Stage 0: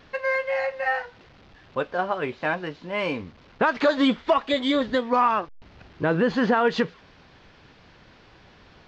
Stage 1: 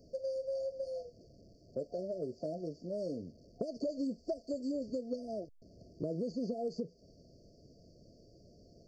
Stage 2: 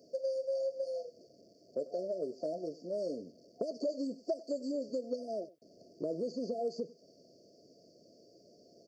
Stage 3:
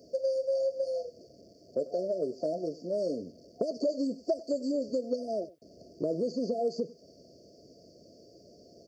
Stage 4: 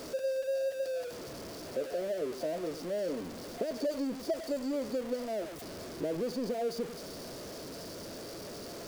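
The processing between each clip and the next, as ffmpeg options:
-filter_complex "[0:a]afftfilt=real='re*(1-between(b*sr/4096,710,4400))':imag='im*(1-between(b*sr/4096,710,4400))':win_size=4096:overlap=0.75,acrossover=split=110|2500[a][b][c];[a]acompressor=threshold=-59dB:ratio=4[d];[b]acompressor=threshold=-31dB:ratio=4[e];[c]acompressor=threshold=-53dB:ratio=4[f];[d][e][f]amix=inputs=3:normalize=0,volume=-4.5dB"
-af "highpass=310,aecho=1:1:97:0.112,volume=3dB"
-af "equalizer=f=65:w=1.1:g=13.5,volume=5dB"
-af "aeval=exprs='val(0)+0.5*0.0211*sgn(val(0))':c=same,volume=-5dB"

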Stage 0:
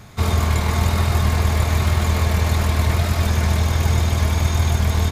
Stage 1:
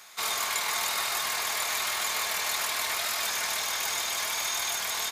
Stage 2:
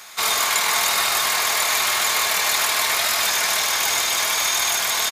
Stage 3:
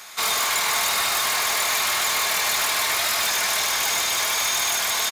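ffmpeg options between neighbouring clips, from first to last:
-af "highpass=920,highshelf=f=3k:g=8,volume=-4dB"
-af "aecho=1:1:82:0.316,volume=9dB"
-af "asoftclip=type=tanh:threshold=-16dB"

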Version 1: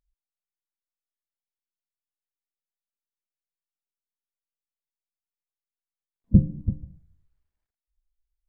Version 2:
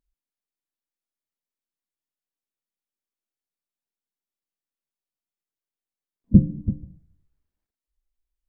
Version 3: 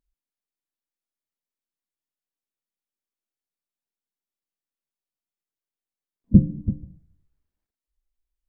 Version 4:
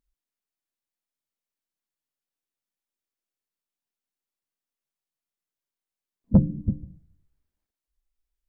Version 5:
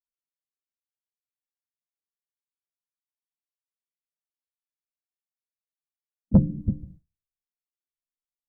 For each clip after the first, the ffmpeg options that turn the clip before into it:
-af "equalizer=f=270:w=0.86:g=8.5,volume=-2dB"
-af anull
-af "asoftclip=type=tanh:threshold=-8dB"
-af "agate=range=-33dB:threshold=-42dB:ratio=3:detection=peak"

